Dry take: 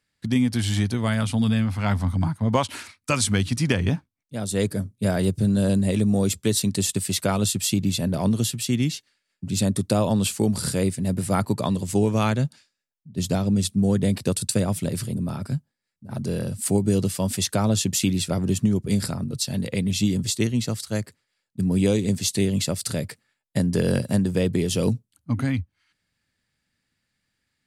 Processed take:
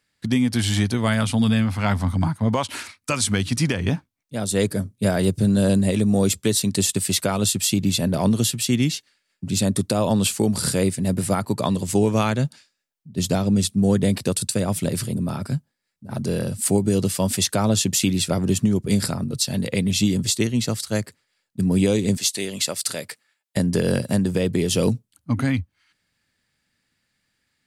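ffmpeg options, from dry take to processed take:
ffmpeg -i in.wav -filter_complex "[0:a]asettb=1/sr,asplit=3[link_01][link_02][link_03];[link_01]atrim=end=22.174[link_04];[link_02]atrim=start=22.17:end=23.57,asetpts=PTS-STARTPTS,afade=type=in:duration=0.004:curve=qsin,afade=type=out:start_time=1.396:duration=0.004:curve=qsin,highpass=frequency=760:poles=1[link_05];[link_03]atrim=start=23.566[link_06];[link_04][link_05]acrossfade=duration=0.004:curve1=hsin:curve2=qsin[link_07];[link_07][link_06]acrossfade=duration=0.004:curve1=qsin:curve2=hsin,lowshelf=frequency=180:gain=-4.5,alimiter=limit=-13.5dB:level=0:latency=1:release=221,volume=4.5dB" out.wav

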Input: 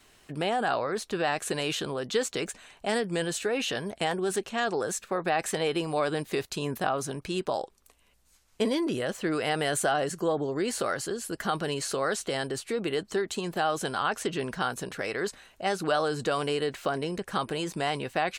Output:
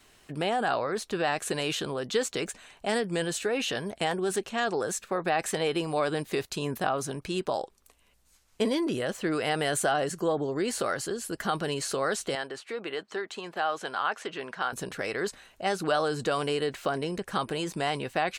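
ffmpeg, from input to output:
ffmpeg -i in.wav -filter_complex "[0:a]asettb=1/sr,asplit=3[link_01][link_02][link_03];[link_01]atrim=end=12.354[link_04];[link_02]atrim=start=12.35:end=14.73,asetpts=PTS-STARTPTS,afade=type=in:duration=0.004:curve=qsin,afade=type=out:start_time=2.376:duration=0.004:curve=qsin,bandpass=frequency=1400:width_type=q:width=0.53[link_05];[link_03]atrim=start=14.726[link_06];[link_04][link_05]acrossfade=duration=0.004:curve1=hsin:curve2=qsin[link_07];[link_07][link_06]acrossfade=duration=0.004:curve1=qsin:curve2=hsin" out.wav

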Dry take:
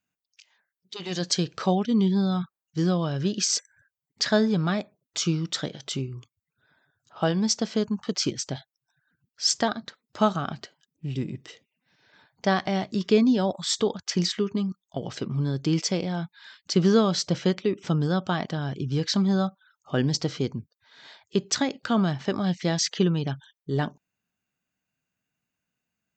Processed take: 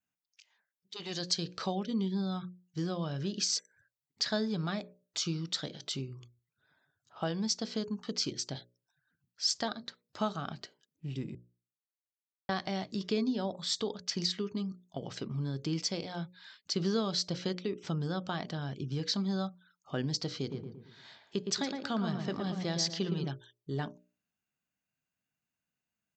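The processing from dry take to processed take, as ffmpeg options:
ffmpeg -i in.wav -filter_complex "[0:a]asettb=1/sr,asplit=3[link_01][link_02][link_03];[link_01]atrim=end=13.284[link_04];[link_02]atrim=start=13.28:end=13.72,asetpts=PTS-STARTPTS,afade=type=in:duration=0.004:curve=qsin,afade=type=out:start_time=0.436:duration=0.004:curve=qsin,highshelf=frequency=5900:gain=-7[link_05];[link_03]atrim=start=13.716[link_06];[link_04][link_05]acrossfade=duration=0.004:curve1=hsin:curve2=qsin[link_07];[link_07][link_06]acrossfade=duration=0.004:curve1=qsin:curve2=hsin,asplit=3[link_08][link_09][link_10];[link_08]afade=type=out:start_time=20.49:duration=0.02[link_11];[link_09]asplit=2[link_12][link_13];[link_13]adelay=114,lowpass=frequency=1700:poles=1,volume=-5dB,asplit=2[link_14][link_15];[link_15]adelay=114,lowpass=frequency=1700:poles=1,volume=0.43,asplit=2[link_16][link_17];[link_17]adelay=114,lowpass=frequency=1700:poles=1,volume=0.43,asplit=2[link_18][link_19];[link_19]adelay=114,lowpass=frequency=1700:poles=1,volume=0.43,asplit=2[link_20][link_21];[link_21]adelay=114,lowpass=frequency=1700:poles=1,volume=0.43[link_22];[link_12][link_14][link_16][link_18][link_20][link_22]amix=inputs=6:normalize=0,afade=type=in:start_time=20.49:duration=0.02,afade=type=out:start_time=23.26:duration=0.02[link_23];[link_10]afade=type=in:start_time=23.26:duration=0.02[link_24];[link_11][link_23][link_24]amix=inputs=3:normalize=0,asplit=3[link_25][link_26][link_27];[link_25]atrim=end=11.35,asetpts=PTS-STARTPTS,afade=type=out:start_time=11.346:duration=0.004:curve=hsin[link_28];[link_26]atrim=start=11.35:end=12.49,asetpts=PTS-STARTPTS,volume=0[link_29];[link_27]atrim=start=12.49,asetpts=PTS-STARTPTS,afade=type=in:duration=0.004:curve=hsin[link_30];[link_28][link_29][link_30]concat=n=3:v=0:a=1,bandreject=frequency=60:width_type=h:width=6,bandreject=frequency=120:width_type=h:width=6,bandreject=frequency=180:width_type=h:width=6,bandreject=frequency=240:width_type=h:width=6,bandreject=frequency=300:width_type=h:width=6,bandreject=frequency=360:width_type=h:width=6,bandreject=frequency=420:width_type=h:width=6,bandreject=frequency=480:width_type=h:width=6,bandreject=frequency=540:width_type=h:width=6,bandreject=frequency=600:width_type=h:width=6,adynamicequalizer=threshold=0.00631:dfrequency=4400:dqfactor=2.1:tfrequency=4400:tqfactor=2.1:attack=5:release=100:ratio=0.375:range=4:mode=boostabove:tftype=bell,acompressor=threshold=-28dB:ratio=1.5,volume=-6.5dB" out.wav

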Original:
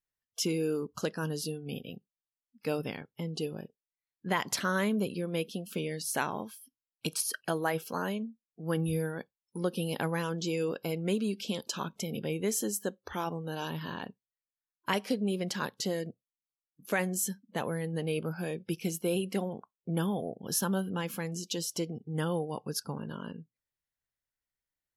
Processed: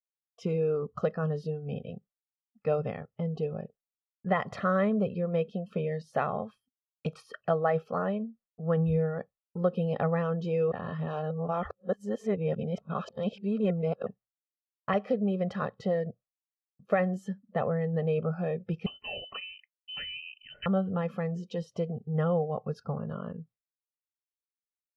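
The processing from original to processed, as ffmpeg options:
ffmpeg -i in.wav -filter_complex "[0:a]asettb=1/sr,asplit=3[link_01][link_02][link_03];[link_01]atrim=end=18.864[link_04];[link_02]atrim=start=18.86:end=20.66,asetpts=PTS-STARTPTS,afade=type=in:duration=0.004:curve=qsin,afade=type=out:start_time=1.796:duration=0.004:curve=qsin,lowpass=frequency=2700:width_type=q:width=0.5098,lowpass=frequency=2700:width_type=q:width=0.6013,lowpass=frequency=2700:width_type=q:width=0.9,lowpass=frequency=2700:width_type=q:width=2.563,afreqshift=-3200[link_05];[link_03]atrim=start=20.656[link_06];[link_04][link_05]acrossfade=duration=0.004:curve1=hsin:curve2=qsin[link_07];[link_07][link_06]acrossfade=duration=0.004:curve1=qsin:curve2=hsin,asplit=3[link_08][link_09][link_10];[link_08]atrim=end=10.722[link_11];[link_09]atrim=start=10.718:end=14.062,asetpts=PTS-STARTPTS,areverse[link_12];[link_10]atrim=start=14.058[link_13];[link_11][link_12]acrossfade=duration=0.004:curve1=hsin:curve2=hsin[link_14];[link_14][link_13]acrossfade=duration=0.004:curve1=hsin:curve2=hsin,lowpass=1300,agate=range=-33dB:threshold=-55dB:ratio=3:detection=peak,aecho=1:1:1.6:0.82,volume=3dB" out.wav

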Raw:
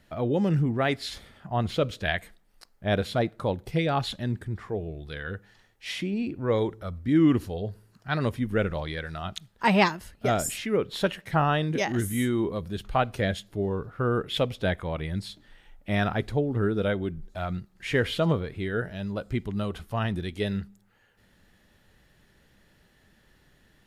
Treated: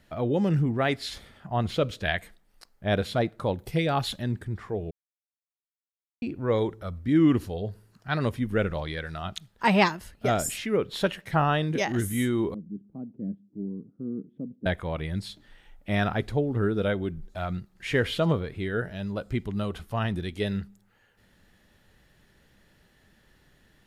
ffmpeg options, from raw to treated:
ffmpeg -i in.wav -filter_complex "[0:a]asettb=1/sr,asplit=3[link_01][link_02][link_03];[link_01]atrim=end=3.594[link_04];[link_02]atrim=start=3.59:end=4.22,asetpts=PTS-STARTPTS,afade=type=in:duration=0.004:curve=qsin,afade=type=out:start_time=0.626:duration=0.004:curve=qsin,highshelf=frequency=10000:gain=10.5[link_05];[link_03]atrim=start=4.216[link_06];[link_04][link_05]acrossfade=duration=0.004:curve1=hsin:curve2=qsin[link_07];[link_07][link_06]acrossfade=duration=0.004:curve1=qsin:curve2=hsin,asettb=1/sr,asplit=3[link_08][link_09][link_10];[link_08]atrim=end=12.544[link_11];[link_09]atrim=start=12.54:end=14.66,asetpts=PTS-STARTPTS,afade=type=in:duration=0.004:curve=qsin,afade=type=out:start_time=2.116:duration=0.004:curve=qsin,asuperpass=centerf=230:order=4:qfactor=1.9[link_12];[link_10]atrim=start=14.656[link_13];[link_11][link_12]acrossfade=duration=0.004:curve1=hsin:curve2=qsin[link_14];[link_14][link_13]acrossfade=duration=0.004:curve1=qsin:curve2=hsin,asplit=3[link_15][link_16][link_17];[link_15]atrim=end=4.91,asetpts=PTS-STARTPTS,afade=type=out:start_time=4.906:duration=0.004:curve=hsin[link_18];[link_16]atrim=start=4.91:end=6.22,asetpts=PTS-STARTPTS,volume=0[link_19];[link_17]atrim=start=6.22,asetpts=PTS-STARTPTS,afade=type=in:duration=0.004:curve=hsin[link_20];[link_18][link_19][link_20]concat=n=3:v=0:a=1" out.wav

